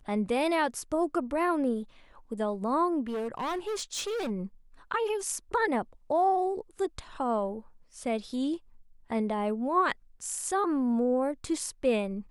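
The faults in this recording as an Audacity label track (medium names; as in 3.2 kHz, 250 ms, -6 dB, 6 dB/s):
3.080000	4.310000	clipped -29.5 dBFS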